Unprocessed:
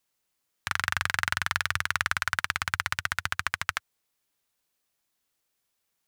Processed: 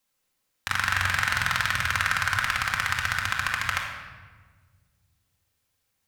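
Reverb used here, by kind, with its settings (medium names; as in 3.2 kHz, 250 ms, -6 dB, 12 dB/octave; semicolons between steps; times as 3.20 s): simulated room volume 1500 m³, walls mixed, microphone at 2.1 m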